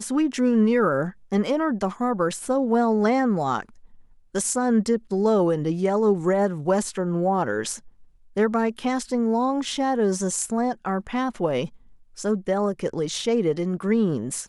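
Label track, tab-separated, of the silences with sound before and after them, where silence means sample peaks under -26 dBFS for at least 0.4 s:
3.610000	4.350000	silence
7.750000	8.370000	silence
11.660000	12.200000	silence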